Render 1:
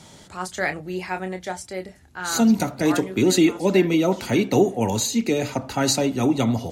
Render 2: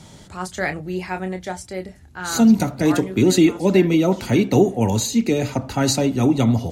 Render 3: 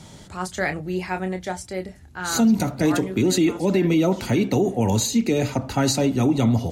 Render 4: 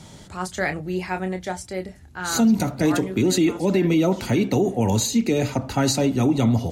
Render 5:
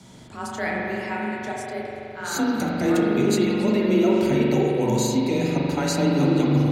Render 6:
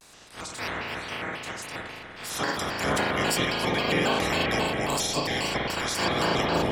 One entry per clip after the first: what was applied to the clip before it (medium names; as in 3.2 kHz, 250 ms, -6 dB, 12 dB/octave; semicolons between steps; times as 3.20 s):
bass shelf 210 Hz +8.5 dB
peak limiter -11 dBFS, peak gain reduction 7.5 dB
no audible change
spring tank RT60 3.2 s, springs 42 ms, chirp 50 ms, DRR -3.5 dB; frequency shift +27 Hz; trim -5 dB
spectral peaks clipped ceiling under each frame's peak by 24 dB; vibrato with a chosen wave square 3.7 Hz, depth 250 cents; trim -5.5 dB